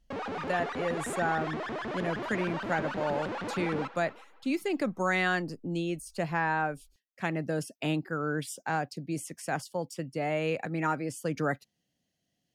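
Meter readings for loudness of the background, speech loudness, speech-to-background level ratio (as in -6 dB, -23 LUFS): -36.0 LUFS, -32.5 LUFS, 3.5 dB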